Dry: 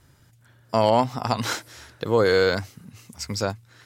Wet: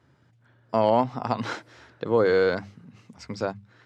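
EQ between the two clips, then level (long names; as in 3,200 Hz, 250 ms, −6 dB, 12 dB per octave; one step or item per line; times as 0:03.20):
high-pass filter 130 Hz 12 dB per octave
head-to-tape spacing loss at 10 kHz 24 dB
mains-hum notches 50/100/150/200 Hz
0.0 dB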